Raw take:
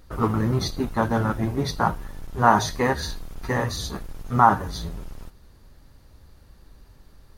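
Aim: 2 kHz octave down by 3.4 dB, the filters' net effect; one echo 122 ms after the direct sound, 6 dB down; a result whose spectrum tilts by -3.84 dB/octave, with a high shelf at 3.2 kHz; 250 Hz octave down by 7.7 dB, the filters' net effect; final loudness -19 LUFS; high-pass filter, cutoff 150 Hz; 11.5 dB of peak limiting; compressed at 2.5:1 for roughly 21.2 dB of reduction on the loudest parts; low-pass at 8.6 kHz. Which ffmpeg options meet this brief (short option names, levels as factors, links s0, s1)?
-af "highpass=150,lowpass=8600,equalizer=f=250:t=o:g=-8.5,equalizer=f=2000:t=o:g=-6,highshelf=f=3200:g=4.5,acompressor=threshold=0.00562:ratio=2.5,alimiter=level_in=3.35:limit=0.0631:level=0:latency=1,volume=0.299,aecho=1:1:122:0.501,volume=20"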